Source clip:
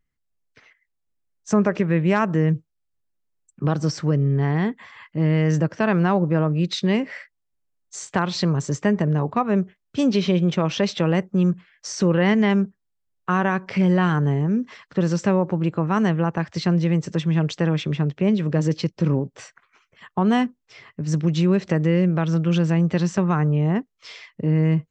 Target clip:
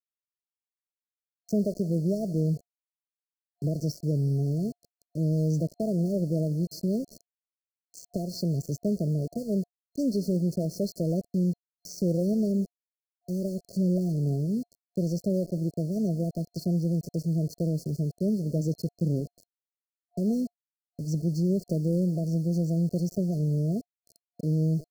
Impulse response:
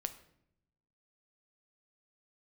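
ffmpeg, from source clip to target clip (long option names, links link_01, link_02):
-af "lowshelf=frequency=70:gain=10,aecho=1:1:179|358|537|716:0.0708|0.0382|0.0206|0.0111,aeval=exprs='val(0)*gte(abs(val(0)),0.0335)':channel_layout=same,afftfilt=real='re*(1-between(b*sr/4096,700,4200))':imag='im*(1-between(b*sr/4096,700,4200))':win_size=4096:overlap=0.75,volume=-8dB"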